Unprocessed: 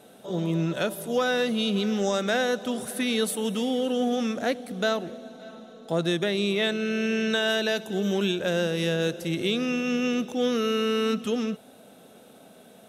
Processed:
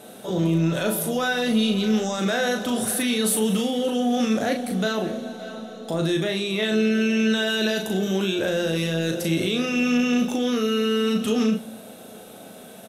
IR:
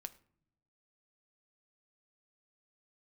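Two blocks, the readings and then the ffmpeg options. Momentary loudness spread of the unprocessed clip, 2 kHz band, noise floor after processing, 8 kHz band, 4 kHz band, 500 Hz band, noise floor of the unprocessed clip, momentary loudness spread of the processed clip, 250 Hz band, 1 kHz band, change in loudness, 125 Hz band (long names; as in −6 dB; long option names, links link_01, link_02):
6 LU, +2.5 dB, −43 dBFS, +8.0 dB, +2.5 dB, +1.5 dB, −52 dBFS, 13 LU, +5.0 dB, +2.0 dB, +3.5 dB, +5.0 dB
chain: -filter_complex "[0:a]alimiter=limit=-23.5dB:level=0:latency=1:release=14,asplit=2[link_01][link_02];[link_02]adelay=37,volume=-5dB[link_03];[link_01][link_03]amix=inputs=2:normalize=0,asplit=2[link_04][link_05];[1:a]atrim=start_sample=2205,asetrate=29106,aresample=44100,highshelf=frequency=6800:gain=6[link_06];[link_05][link_06]afir=irnorm=-1:irlink=0,volume=12dB[link_07];[link_04][link_07]amix=inputs=2:normalize=0,volume=-5dB"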